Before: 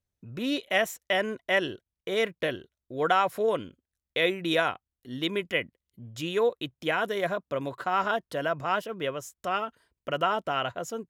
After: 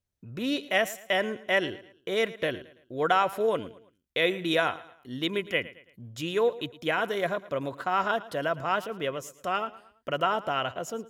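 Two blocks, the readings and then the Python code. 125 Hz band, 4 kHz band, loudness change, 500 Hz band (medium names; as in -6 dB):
0.0 dB, 0.0 dB, 0.0 dB, 0.0 dB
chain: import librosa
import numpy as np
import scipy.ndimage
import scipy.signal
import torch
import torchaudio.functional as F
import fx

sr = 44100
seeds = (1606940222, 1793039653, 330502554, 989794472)

y = fx.echo_feedback(x, sr, ms=111, feedback_pct=40, wet_db=-18)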